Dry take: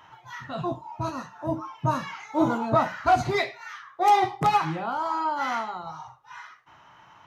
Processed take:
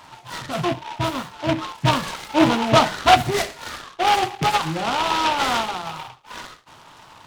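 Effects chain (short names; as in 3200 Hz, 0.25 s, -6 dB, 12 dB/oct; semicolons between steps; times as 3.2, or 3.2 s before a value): rattling part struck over -25 dBFS, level -29 dBFS; 3.17–4.76 compressor 1.5:1, threshold -31 dBFS, peak gain reduction 6 dB; noise-modulated delay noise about 1900 Hz, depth 0.092 ms; gain +6.5 dB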